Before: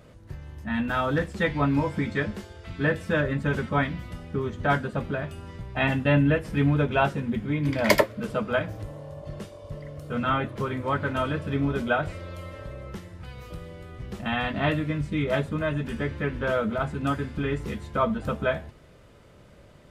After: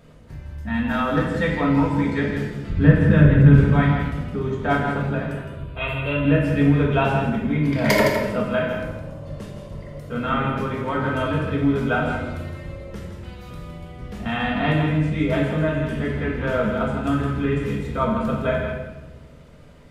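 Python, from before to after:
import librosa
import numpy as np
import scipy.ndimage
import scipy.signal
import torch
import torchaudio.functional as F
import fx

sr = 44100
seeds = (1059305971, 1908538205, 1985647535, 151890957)

y = fx.bass_treble(x, sr, bass_db=14, treble_db=-8, at=(2.7, 3.58))
y = fx.fixed_phaser(y, sr, hz=1200.0, stages=8, at=(5.33, 6.25))
y = y + 10.0 ** (-7.5 / 20.0) * np.pad(y, (int(163 * sr / 1000.0), 0))[:len(y)]
y = fx.room_shoebox(y, sr, seeds[0], volume_m3=690.0, walls='mixed', distance_m=1.7)
y = y * 10.0 ** (-1.0 / 20.0)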